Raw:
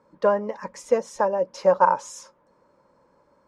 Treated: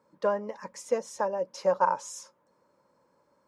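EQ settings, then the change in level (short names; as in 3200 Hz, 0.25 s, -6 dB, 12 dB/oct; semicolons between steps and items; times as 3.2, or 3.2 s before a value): HPF 79 Hz; high shelf 4300 Hz +8 dB; -7.0 dB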